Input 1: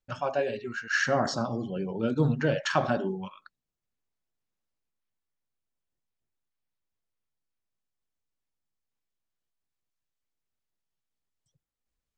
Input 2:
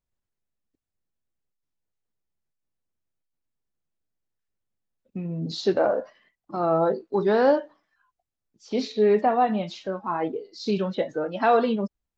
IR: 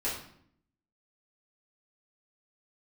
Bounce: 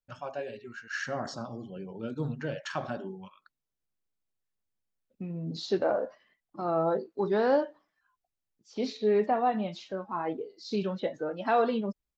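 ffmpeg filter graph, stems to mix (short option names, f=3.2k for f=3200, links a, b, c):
-filter_complex "[0:a]volume=-8.5dB[a];[1:a]adelay=50,volume=-5.5dB[b];[a][b]amix=inputs=2:normalize=0"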